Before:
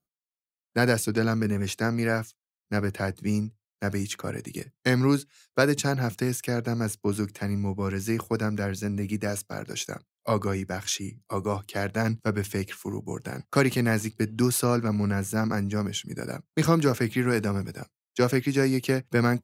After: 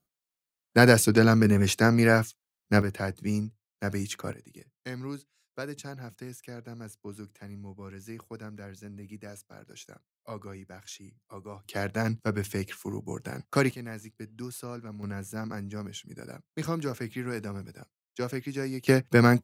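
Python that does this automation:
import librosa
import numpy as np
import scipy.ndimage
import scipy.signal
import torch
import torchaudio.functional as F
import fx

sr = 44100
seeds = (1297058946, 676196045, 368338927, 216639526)

y = fx.gain(x, sr, db=fx.steps((0.0, 5.0), (2.82, -2.5), (4.33, -15.0), (11.65, -2.5), (13.71, -15.5), (15.03, -9.5), (18.87, 3.5)))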